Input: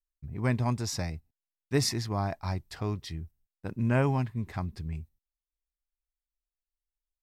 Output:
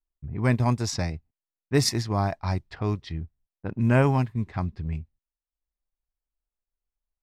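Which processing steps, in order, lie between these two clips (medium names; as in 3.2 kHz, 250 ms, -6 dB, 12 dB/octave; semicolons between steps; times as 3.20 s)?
transient shaper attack -2 dB, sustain -7 dB; level-controlled noise filter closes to 1.1 kHz, open at -26.5 dBFS; trim +6 dB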